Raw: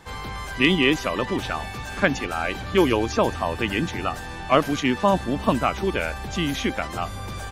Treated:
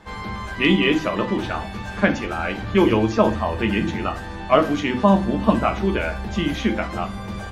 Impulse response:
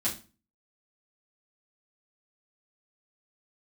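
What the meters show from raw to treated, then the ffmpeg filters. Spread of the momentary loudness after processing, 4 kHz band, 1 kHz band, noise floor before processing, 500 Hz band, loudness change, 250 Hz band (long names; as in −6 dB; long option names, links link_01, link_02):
11 LU, −1.0 dB, +1.5 dB, −34 dBFS, +2.5 dB, +2.5 dB, +4.5 dB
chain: -filter_complex "[0:a]lowpass=frequency=2800:poles=1,asplit=2[link_01][link_02];[1:a]atrim=start_sample=2205,asetrate=42336,aresample=44100[link_03];[link_02][link_03]afir=irnorm=-1:irlink=0,volume=-7dB[link_04];[link_01][link_04]amix=inputs=2:normalize=0,volume=-1.5dB"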